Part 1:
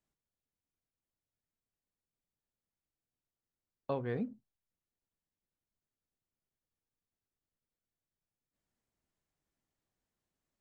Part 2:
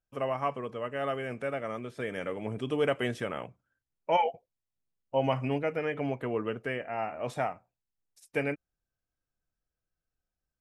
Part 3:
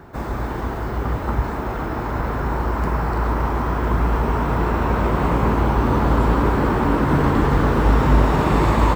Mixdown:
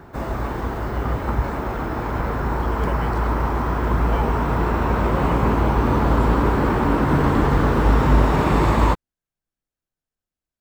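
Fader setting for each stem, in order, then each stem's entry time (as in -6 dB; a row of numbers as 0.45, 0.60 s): -6.0, -5.5, -0.5 dB; 0.00, 0.00, 0.00 s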